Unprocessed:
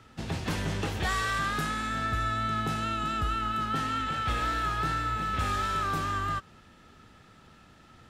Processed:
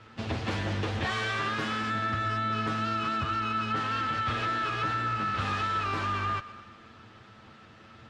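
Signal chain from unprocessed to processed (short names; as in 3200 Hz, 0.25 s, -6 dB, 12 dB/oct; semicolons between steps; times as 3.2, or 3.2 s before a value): minimum comb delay 9.1 ms; LPF 4300 Hz 12 dB/oct; thinning echo 0.123 s, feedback 59%, level -19 dB; compressor 2.5:1, threshold -33 dBFS, peak gain reduction 5 dB; HPF 51 Hz; gain +5 dB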